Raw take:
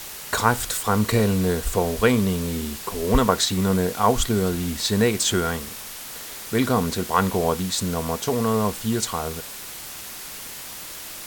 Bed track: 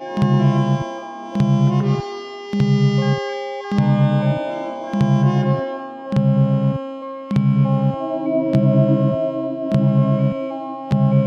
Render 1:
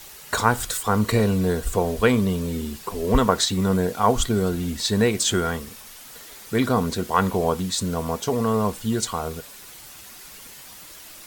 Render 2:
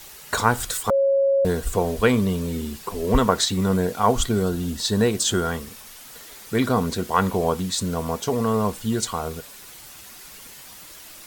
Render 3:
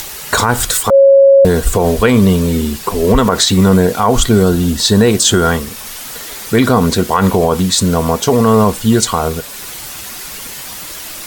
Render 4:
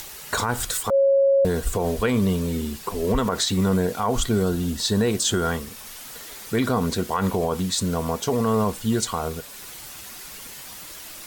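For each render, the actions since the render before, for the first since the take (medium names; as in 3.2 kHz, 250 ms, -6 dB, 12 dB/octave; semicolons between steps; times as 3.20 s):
noise reduction 8 dB, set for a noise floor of -37 dBFS
0.90–1.45 s: bleep 549 Hz -15.5 dBFS; 4.43–5.51 s: peaking EQ 2.2 kHz -8 dB 0.35 oct
upward compressor, threshold -35 dBFS; loudness maximiser +13 dB
trim -11.5 dB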